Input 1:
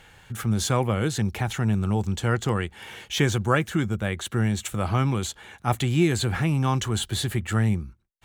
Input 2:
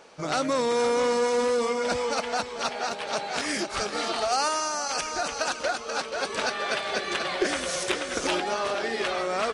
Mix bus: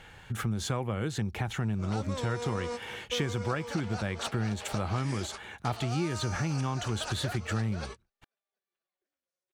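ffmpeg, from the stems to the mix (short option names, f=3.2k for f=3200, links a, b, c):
-filter_complex "[0:a]highshelf=f=6.2k:g=-8.5,volume=1dB,asplit=2[a][b];[1:a]adelay=1600,volume=-6dB[c];[b]apad=whole_len=490889[d];[c][d]sidechaingate=range=-60dB:threshold=-37dB:ratio=16:detection=peak[e];[a][e]amix=inputs=2:normalize=0,acompressor=threshold=-29dB:ratio=4"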